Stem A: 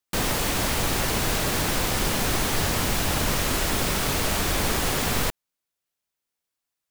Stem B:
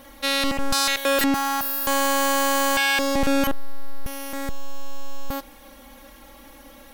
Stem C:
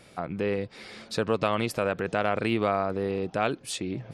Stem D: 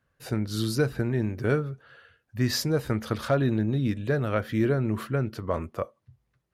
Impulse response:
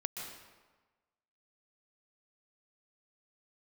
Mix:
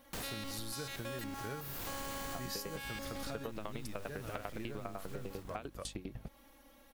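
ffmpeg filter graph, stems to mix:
-filter_complex "[0:a]asoftclip=type=hard:threshold=-24.5dB,volume=-11.5dB,asplit=2[link_01][link_02];[link_02]volume=-12dB[link_03];[1:a]volume=-15.5dB[link_04];[2:a]aeval=exprs='val(0)+0.0141*(sin(2*PI*50*n/s)+sin(2*PI*2*50*n/s)/2+sin(2*PI*3*50*n/s)/3+sin(2*PI*4*50*n/s)/4+sin(2*PI*5*50*n/s)/5)':channel_layout=same,aeval=exprs='val(0)*pow(10,-24*if(lt(mod(10*n/s,1),2*abs(10)/1000),1-mod(10*n/s,1)/(2*abs(10)/1000),(mod(10*n/s,1)-2*abs(10)/1000)/(1-2*abs(10)/1000))/20)':channel_layout=same,adelay=2150,volume=1.5dB[link_05];[3:a]crystalizer=i=4:c=0,volume=-11.5dB,asplit=2[link_06][link_07];[link_07]apad=whole_len=304622[link_08];[link_01][link_08]sidechaincompress=threshold=-50dB:ratio=8:attack=37:release=185[link_09];[link_03]aecho=0:1:128|256|384|512|640|768|896|1024:1|0.55|0.303|0.166|0.0915|0.0503|0.0277|0.0152[link_10];[link_09][link_04][link_05][link_06][link_10]amix=inputs=5:normalize=0,acompressor=threshold=-39dB:ratio=6"

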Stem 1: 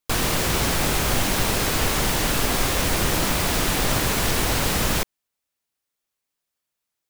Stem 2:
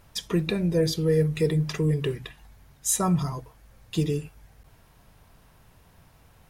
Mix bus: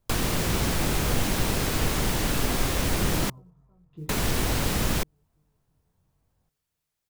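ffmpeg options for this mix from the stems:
ffmpeg -i stem1.wav -i stem2.wav -filter_complex "[0:a]volume=-1dB,asplit=3[link_01][link_02][link_03];[link_01]atrim=end=3.3,asetpts=PTS-STARTPTS,afade=type=out:start_time=3.296:duration=0.004:curve=hsin[link_04];[link_02]atrim=start=3.3:end=4.09,asetpts=PTS-STARTPTS,volume=0[link_05];[link_03]atrim=start=4.09,asetpts=PTS-STARTPTS,afade=type=in:duration=0.004:curve=hsin[link_06];[link_04][link_05][link_06]concat=n=3:v=0:a=1[link_07];[1:a]lowpass=1400,lowshelf=frequency=490:gain=6.5,flanger=delay=16.5:depth=6.4:speed=0.43,volume=-18dB,asplit=2[link_08][link_09];[link_09]volume=-19.5dB,aecho=0:1:345|690|1035|1380|1725|2070|2415|2760:1|0.55|0.303|0.166|0.0915|0.0503|0.0277|0.0152[link_10];[link_07][link_08][link_10]amix=inputs=3:normalize=0,acrossover=split=390[link_11][link_12];[link_12]acompressor=threshold=-31dB:ratio=2[link_13];[link_11][link_13]amix=inputs=2:normalize=0,acrusher=bits=9:mode=log:mix=0:aa=0.000001" out.wav

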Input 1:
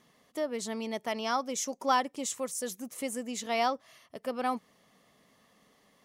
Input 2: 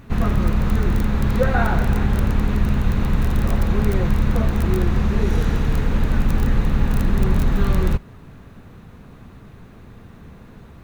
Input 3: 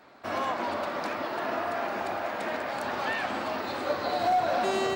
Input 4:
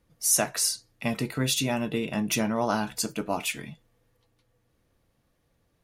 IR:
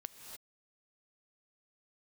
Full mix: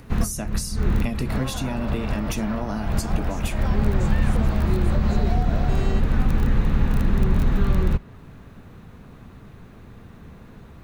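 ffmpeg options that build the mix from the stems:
-filter_complex "[0:a]adelay=1750,volume=-7.5dB[link_01];[1:a]adynamicequalizer=threshold=0.00282:dfrequency=4800:dqfactor=0.7:tfrequency=4800:tqfactor=0.7:attack=5:release=100:ratio=0.375:range=2:mode=cutabove:tftype=highshelf,volume=-1.5dB[link_02];[2:a]adelay=1050,volume=-1dB[link_03];[3:a]acompressor=mode=upward:threshold=-42dB:ratio=2.5,volume=1.5dB,asplit=2[link_04][link_05];[link_05]apad=whole_len=478038[link_06];[link_02][link_06]sidechaincompress=threshold=-35dB:ratio=8:attack=35:release=127[link_07];[link_01][link_07][link_03][link_04]amix=inputs=4:normalize=0,acrossover=split=310[link_08][link_09];[link_09]acompressor=threshold=-30dB:ratio=6[link_10];[link_08][link_10]amix=inputs=2:normalize=0"

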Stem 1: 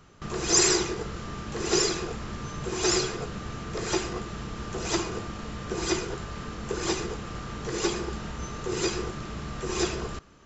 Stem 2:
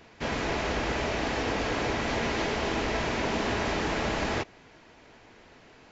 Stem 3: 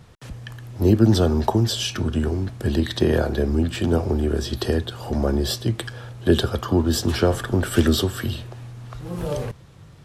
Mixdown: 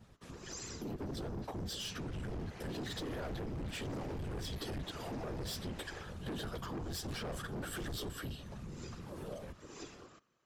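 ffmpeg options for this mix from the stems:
ffmpeg -i stem1.wav -i stem2.wav -i stem3.wav -filter_complex "[0:a]highpass=200,volume=-14.5dB[link_01];[1:a]asubboost=boost=6:cutoff=52,adelay=1600,volume=-19dB[link_02];[2:a]asplit=2[link_03][link_04];[link_04]adelay=11.6,afreqshift=0.88[link_05];[link_03][link_05]amix=inputs=2:normalize=1,volume=-3.5dB[link_06];[link_02][link_06]amix=inputs=2:normalize=0,dynaudnorm=framelen=210:gausssize=17:maxgain=16dB,alimiter=limit=-12dB:level=0:latency=1:release=19,volume=0dB[link_07];[link_01][link_07]amix=inputs=2:normalize=0,afftfilt=real='hypot(re,im)*cos(2*PI*random(0))':imag='hypot(re,im)*sin(2*PI*random(1))':win_size=512:overlap=0.75,volume=27.5dB,asoftclip=hard,volume=-27.5dB,acompressor=threshold=-43dB:ratio=3" out.wav

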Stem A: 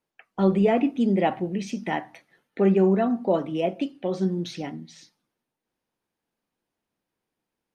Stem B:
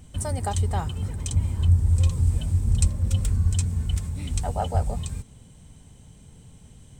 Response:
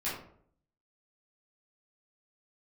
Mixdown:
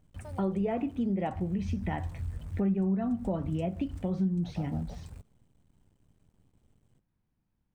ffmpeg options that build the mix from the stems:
-filter_complex "[0:a]asubboost=boost=11.5:cutoff=130,volume=-1dB,asplit=2[link_01][link_02];[1:a]acrusher=bits=7:dc=4:mix=0:aa=0.000001,volume=-14dB[link_03];[link_02]apad=whole_len=308541[link_04];[link_03][link_04]sidechaincompress=threshold=-23dB:ratio=8:attack=16:release=234[link_05];[link_01][link_05]amix=inputs=2:normalize=0,highshelf=frequency=2600:gain=-12,acompressor=threshold=-29dB:ratio=3"

